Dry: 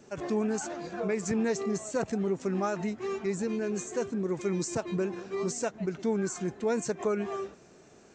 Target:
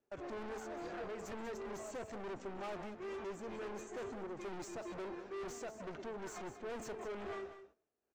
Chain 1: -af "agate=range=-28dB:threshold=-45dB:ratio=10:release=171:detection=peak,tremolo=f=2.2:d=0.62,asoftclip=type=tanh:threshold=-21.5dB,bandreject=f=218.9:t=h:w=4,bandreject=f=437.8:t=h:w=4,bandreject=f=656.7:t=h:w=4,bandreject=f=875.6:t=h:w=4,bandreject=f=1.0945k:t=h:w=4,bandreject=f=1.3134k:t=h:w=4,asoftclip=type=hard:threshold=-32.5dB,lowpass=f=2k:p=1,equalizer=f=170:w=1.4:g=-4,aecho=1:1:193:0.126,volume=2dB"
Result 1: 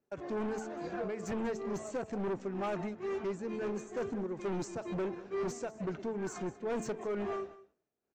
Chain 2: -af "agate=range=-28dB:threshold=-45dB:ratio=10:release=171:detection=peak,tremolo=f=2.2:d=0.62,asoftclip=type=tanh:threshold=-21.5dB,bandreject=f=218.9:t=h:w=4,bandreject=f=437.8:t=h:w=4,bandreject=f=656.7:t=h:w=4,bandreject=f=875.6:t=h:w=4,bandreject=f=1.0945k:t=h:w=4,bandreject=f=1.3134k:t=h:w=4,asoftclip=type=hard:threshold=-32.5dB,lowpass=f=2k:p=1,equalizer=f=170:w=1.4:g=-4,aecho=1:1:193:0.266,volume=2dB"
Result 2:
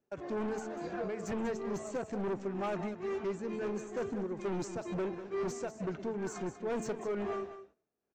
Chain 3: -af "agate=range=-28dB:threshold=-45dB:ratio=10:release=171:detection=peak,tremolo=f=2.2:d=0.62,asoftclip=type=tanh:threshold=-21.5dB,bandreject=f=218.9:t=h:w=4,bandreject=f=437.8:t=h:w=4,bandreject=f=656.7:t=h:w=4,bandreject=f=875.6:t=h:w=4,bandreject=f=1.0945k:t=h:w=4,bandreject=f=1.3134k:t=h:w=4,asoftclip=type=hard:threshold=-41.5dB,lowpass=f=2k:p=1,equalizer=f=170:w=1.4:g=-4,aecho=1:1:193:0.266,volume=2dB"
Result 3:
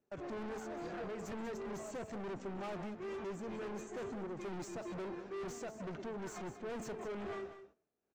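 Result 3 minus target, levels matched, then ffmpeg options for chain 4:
125 Hz band +4.5 dB
-af "agate=range=-28dB:threshold=-45dB:ratio=10:release=171:detection=peak,tremolo=f=2.2:d=0.62,asoftclip=type=tanh:threshold=-21.5dB,bandreject=f=218.9:t=h:w=4,bandreject=f=437.8:t=h:w=4,bandreject=f=656.7:t=h:w=4,bandreject=f=875.6:t=h:w=4,bandreject=f=1.0945k:t=h:w=4,bandreject=f=1.3134k:t=h:w=4,asoftclip=type=hard:threshold=-41.5dB,lowpass=f=2k:p=1,equalizer=f=170:w=1.4:g=-11.5,aecho=1:1:193:0.266,volume=2dB"

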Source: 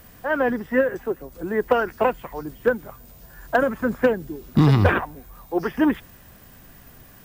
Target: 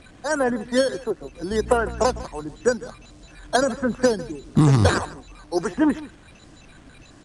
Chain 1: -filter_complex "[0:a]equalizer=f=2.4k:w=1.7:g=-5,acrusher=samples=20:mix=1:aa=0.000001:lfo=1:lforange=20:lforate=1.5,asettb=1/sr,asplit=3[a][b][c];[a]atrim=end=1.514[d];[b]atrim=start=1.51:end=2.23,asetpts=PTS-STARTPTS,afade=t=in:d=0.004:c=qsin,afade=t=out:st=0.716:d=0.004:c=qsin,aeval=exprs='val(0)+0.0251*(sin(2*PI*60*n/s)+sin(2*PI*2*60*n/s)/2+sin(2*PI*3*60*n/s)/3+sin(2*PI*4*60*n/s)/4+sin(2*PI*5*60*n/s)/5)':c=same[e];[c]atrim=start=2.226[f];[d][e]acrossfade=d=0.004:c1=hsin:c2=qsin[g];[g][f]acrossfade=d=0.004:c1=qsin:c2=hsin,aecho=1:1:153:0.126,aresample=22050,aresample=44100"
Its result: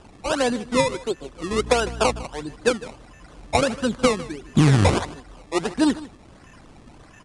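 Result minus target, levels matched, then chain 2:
decimation with a swept rate: distortion +10 dB
-filter_complex "[0:a]equalizer=f=2.4k:w=1.7:g=-5,acrusher=samples=6:mix=1:aa=0.000001:lfo=1:lforange=6:lforate=1.5,asettb=1/sr,asplit=3[a][b][c];[a]atrim=end=1.514[d];[b]atrim=start=1.51:end=2.23,asetpts=PTS-STARTPTS,afade=t=in:d=0.004:c=qsin,afade=t=out:st=0.716:d=0.004:c=qsin,aeval=exprs='val(0)+0.0251*(sin(2*PI*60*n/s)+sin(2*PI*2*60*n/s)/2+sin(2*PI*3*60*n/s)/3+sin(2*PI*4*60*n/s)/4+sin(2*PI*5*60*n/s)/5)':c=same[e];[c]atrim=start=2.226[f];[d][e]acrossfade=d=0.004:c1=hsin:c2=qsin[g];[g][f]acrossfade=d=0.004:c1=qsin:c2=hsin,aecho=1:1:153:0.126,aresample=22050,aresample=44100"

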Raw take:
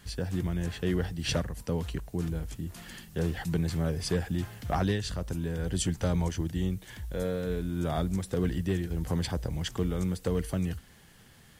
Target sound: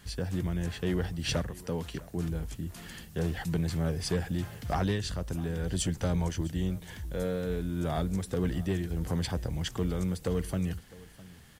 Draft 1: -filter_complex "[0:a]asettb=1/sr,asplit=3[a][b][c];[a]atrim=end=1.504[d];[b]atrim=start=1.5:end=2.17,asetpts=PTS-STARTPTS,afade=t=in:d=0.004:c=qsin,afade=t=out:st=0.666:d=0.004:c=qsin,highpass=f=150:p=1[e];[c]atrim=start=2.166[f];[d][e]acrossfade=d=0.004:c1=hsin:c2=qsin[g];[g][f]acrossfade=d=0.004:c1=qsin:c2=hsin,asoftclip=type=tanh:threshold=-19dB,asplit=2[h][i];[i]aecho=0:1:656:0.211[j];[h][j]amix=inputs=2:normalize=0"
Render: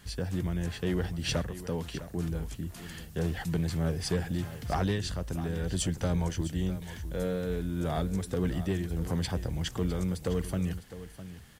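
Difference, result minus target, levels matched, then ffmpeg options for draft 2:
echo-to-direct +7 dB
-filter_complex "[0:a]asettb=1/sr,asplit=3[a][b][c];[a]atrim=end=1.504[d];[b]atrim=start=1.5:end=2.17,asetpts=PTS-STARTPTS,afade=t=in:d=0.004:c=qsin,afade=t=out:st=0.666:d=0.004:c=qsin,highpass=f=150:p=1[e];[c]atrim=start=2.166[f];[d][e]acrossfade=d=0.004:c1=hsin:c2=qsin[g];[g][f]acrossfade=d=0.004:c1=qsin:c2=hsin,asoftclip=type=tanh:threshold=-19dB,asplit=2[h][i];[i]aecho=0:1:656:0.0944[j];[h][j]amix=inputs=2:normalize=0"

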